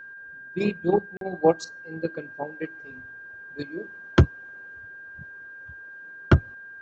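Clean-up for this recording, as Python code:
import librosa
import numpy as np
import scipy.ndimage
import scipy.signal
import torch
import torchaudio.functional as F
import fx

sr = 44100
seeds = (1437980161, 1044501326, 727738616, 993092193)

y = fx.notch(x, sr, hz=1600.0, q=30.0)
y = fx.fix_interpolate(y, sr, at_s=(1.17,), length_ms=42.0)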